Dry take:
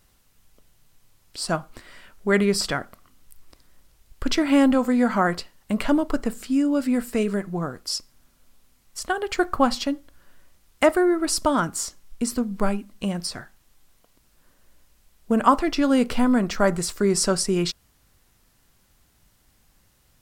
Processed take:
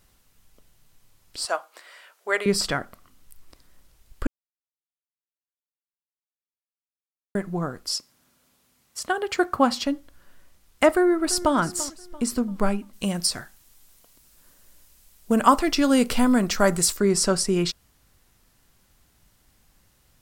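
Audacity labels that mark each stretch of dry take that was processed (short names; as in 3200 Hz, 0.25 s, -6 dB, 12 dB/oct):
1.450000	2.460000	HPF 490 Hz 24 dB/oct
4.270000	7.350000	mute
7.930000	9.840000	HPF 150 Hz -> 65 Hz
10.900000	11.550000	echo throw 0.34 s, feedback 40%, level -16 dB
12.930000	16.970000	high shelf 4300 Hz +10.5 dB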